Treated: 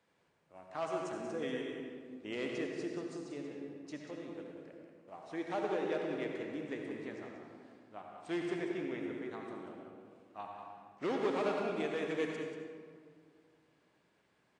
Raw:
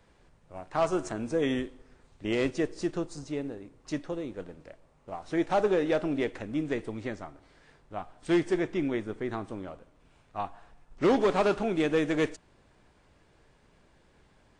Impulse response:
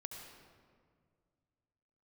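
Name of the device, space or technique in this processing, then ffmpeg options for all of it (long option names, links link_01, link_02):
PA in a hall: -filter_complex "[0:a]highpass=170,equalizer=frequency=2400:width_type=o:width=1.8:gain=3,aecho=1:1:186:0.355[link_01];[1:a]atrim=start_sample=2205[link_02];[link_01][link_02]afir=irnorm=-1:irlink=0,volume=-7dB"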